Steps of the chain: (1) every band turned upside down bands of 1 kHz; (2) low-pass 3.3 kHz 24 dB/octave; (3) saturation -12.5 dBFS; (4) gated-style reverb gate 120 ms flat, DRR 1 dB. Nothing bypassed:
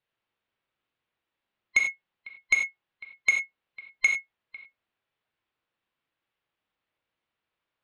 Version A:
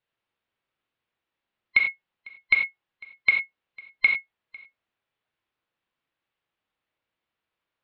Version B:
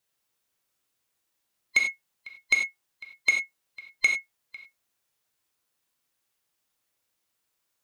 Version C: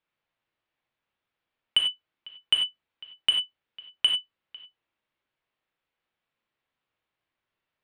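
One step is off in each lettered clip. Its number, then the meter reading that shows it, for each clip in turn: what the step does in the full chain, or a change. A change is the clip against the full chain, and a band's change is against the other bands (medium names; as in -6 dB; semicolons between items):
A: 3, distortion -16 dB; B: 2, 4 kHz band +6.0 dB; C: 1, 4 kHz band +28.0 dB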